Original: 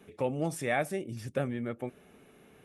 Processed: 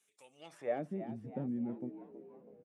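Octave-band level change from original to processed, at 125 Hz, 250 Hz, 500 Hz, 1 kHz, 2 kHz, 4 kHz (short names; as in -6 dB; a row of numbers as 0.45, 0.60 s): -9.5 dB, -3.0 dB, -7.5 dB, -10.5 dB, -18.0 dB, under -10 dB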